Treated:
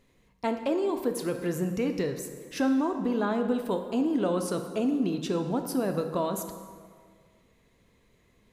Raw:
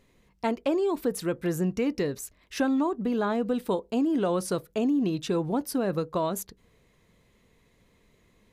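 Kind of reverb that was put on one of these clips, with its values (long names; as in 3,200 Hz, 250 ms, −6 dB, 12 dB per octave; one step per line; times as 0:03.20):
dense smooth reverb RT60 1.9 s, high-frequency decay 0.65×, DRR 6 dB
level −2 dB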